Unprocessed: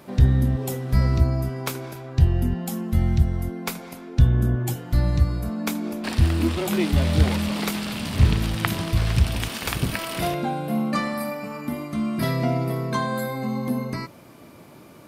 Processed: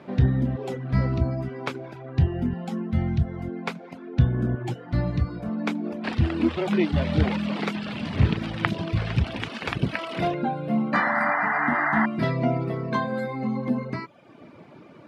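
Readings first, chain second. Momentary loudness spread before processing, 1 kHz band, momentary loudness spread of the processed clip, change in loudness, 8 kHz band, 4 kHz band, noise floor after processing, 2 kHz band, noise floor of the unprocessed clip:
9 LU, +2.5 dB, 9 LU, -2.0 dB, under -15 dB, -5.5 dB, -48 dBFS, +4.5 dB, -46 dBFS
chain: high-pass 110 Hz 12 dB/octave; reverb removal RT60 0.71 s; low-pass 2.8 kHz 12 dB/octave; peaking EQ 1.1 kHz -2 dB; painted sound noise, 10.93–12.06 s, 650–2100 Hz -26 dBFS; trim +2 dB

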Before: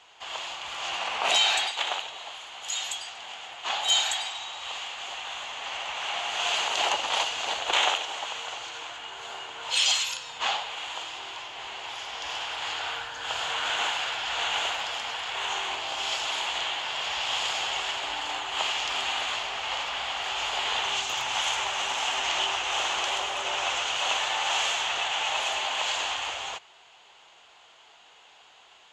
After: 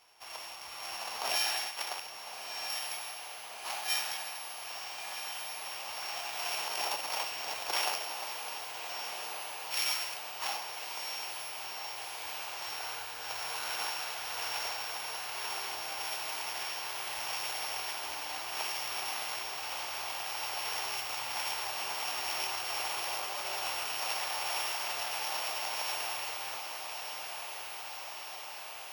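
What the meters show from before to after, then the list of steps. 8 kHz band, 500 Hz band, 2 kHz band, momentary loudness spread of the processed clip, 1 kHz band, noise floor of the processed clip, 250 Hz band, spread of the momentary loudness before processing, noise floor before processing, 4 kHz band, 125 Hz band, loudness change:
-5.0 dB, -7.0 dB, -8.5 dB, 8 LU, -8.0 dB, -44 dBFS, -7.0 dB, 12 LU, -55 dBFS, -10.0 dB, -7.0 dB, -7.0 dB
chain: sorted samples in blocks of 8 samples; echo that smears into a reverb 1317 ms, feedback 73%, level -7 dB; trim -8.5 dB

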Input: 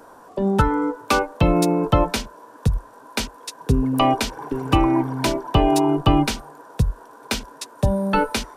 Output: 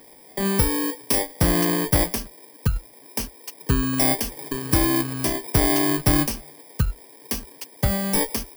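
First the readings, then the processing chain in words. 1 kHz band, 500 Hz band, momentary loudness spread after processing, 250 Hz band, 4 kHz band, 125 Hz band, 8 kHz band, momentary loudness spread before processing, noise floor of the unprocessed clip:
-8.5 dB, -5.0 dB, 14 LU, -3.5 dB, -1.5 dB, -2.5 dB, +6.5 dB, 13 LU, -46 dBFS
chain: bit-reversed sample order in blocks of 32 samples; trim -2.5 dB

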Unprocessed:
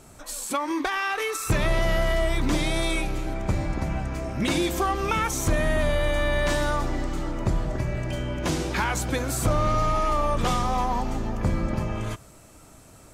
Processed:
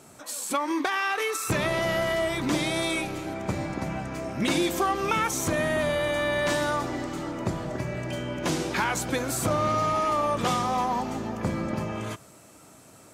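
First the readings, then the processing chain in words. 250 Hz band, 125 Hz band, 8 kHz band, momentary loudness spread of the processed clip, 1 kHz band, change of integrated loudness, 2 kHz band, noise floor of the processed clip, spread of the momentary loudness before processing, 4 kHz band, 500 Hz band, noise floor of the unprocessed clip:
-0.5 dB, -5.5 dB, 0.0 dB, 8 LU, 0.0 dB, -1.0 dB, 0.0 dB, -52 dBFS, 6 LU, 0.0 dB, 0.0 dB, -49 dBFS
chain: high-pass 140 Hz 12 dB/octave

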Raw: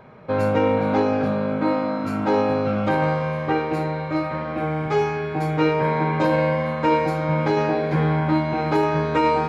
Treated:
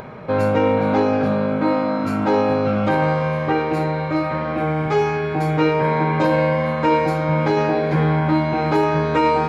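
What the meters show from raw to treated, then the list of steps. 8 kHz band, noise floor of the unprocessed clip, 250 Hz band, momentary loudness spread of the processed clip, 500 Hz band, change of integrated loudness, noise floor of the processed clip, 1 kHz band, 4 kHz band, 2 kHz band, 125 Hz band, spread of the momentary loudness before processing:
no reading, -28 dBFS, +2.5 dB, 4 LU, +2.5 dB, +2.5 dB, -24 dBFS, +2.5 dB, +2.5 dB, +2.5 dB, +3.0 dB, 5 LU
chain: in parallel at -3 dB: peak limiter -19.5 dBFS, peak gain reduction 11 dB; on the sum: upward compressor, threshold -29 dBFS

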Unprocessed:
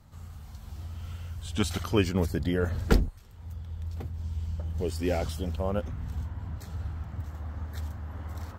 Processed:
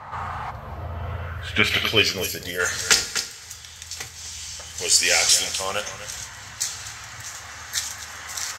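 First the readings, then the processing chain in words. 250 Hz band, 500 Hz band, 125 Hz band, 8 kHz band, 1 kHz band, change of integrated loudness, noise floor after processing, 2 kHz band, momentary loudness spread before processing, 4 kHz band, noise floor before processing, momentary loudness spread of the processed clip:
-5.5 dB, +1.5 dB, -5.0 dB, +24.5 dB, +9.5 dB, +10.0 dB, -41 dBFS, +17.5 dB, 15 LU, +20.0 dB, -46 dBFS, 17 LU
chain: graphic EQ 125/250/2000 Hz +7/-8/+7 dB; two-slope reverb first 0.26 s, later 1.6 s, from -18 dB, DRR 6 dB; time-frequency box 0.51–2.60 s, 700–11000 Hz -12 dB; band-pass sweep 960 Hz -> 6.5 kHz, 1.17–2.27 s; on a send: delay 249 ms -13.5 dB; on the sum: loudness maximiser +32 dB; trim -1 dB

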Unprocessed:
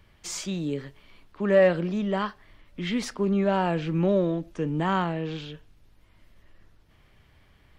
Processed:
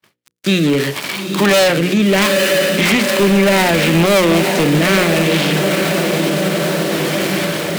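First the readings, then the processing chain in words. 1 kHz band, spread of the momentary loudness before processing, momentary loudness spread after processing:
+12.0 dB, 13 LU, 6 LU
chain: dead-time distortion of 0.21 ms; reverse; upward compressor, threshold -40 dBFS; reverse; rotary cabinet horn 0.65 Hz; tilt EQ +2 dB/octave; in parallel at +0.5 dB: compression, threshold -44 dBFS, peak gain reduction 22.5 dB; on the sum: high-pass 130 Hz 24 dB/octave; echo that smears into a reverb 900 ms, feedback 62%, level -9 dB; dynamic bell 2.3 kHz, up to +6 dB, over -49 dBFS, Q 1.7; overload inside the chain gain 27 dB; gate -50 dBFS, range -56 dB; hum notches 60/120/180/240/300/360/420/480/540 Hz; loudness maximiser +31.5 dB; trim -6 dB

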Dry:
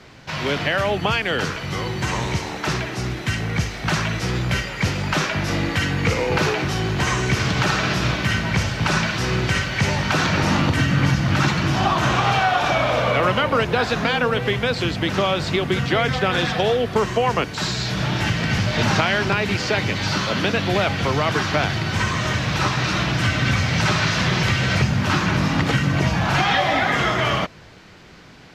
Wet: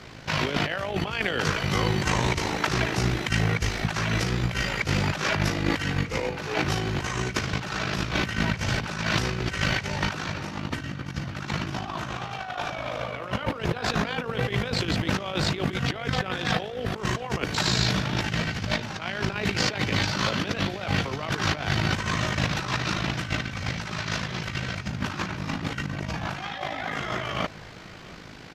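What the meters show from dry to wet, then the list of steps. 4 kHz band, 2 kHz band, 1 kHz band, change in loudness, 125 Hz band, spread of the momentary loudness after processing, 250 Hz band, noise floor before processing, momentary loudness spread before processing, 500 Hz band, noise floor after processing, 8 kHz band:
-5.5 dB, -7.0 dB, -8.5 dB, -7.0 dB, -7.0 dB, 7 LU, -6.5 dB, -32 dBFS, 5 LU, -8.5 dB, -38 dBFS, -5.0 dB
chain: compressor with a negative ratio -24 dBFS, ratio -0.5; AM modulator 53 Hz, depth 45%; delay 690 ms -22.5 dB

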